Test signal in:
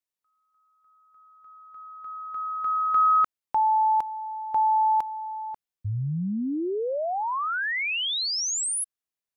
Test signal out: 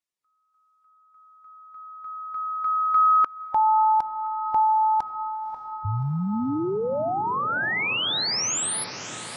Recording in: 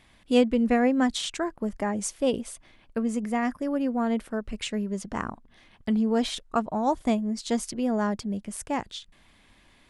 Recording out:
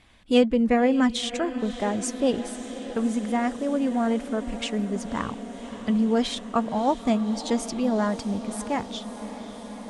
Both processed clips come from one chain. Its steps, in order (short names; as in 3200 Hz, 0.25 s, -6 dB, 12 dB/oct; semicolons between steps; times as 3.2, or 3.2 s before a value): bin magnitudes rounded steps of 15 dB; LPF 10000 Hz 12 dB/oct; diffused feedback echo 0.587 s, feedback 79%, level -14 dB; gain +2 dB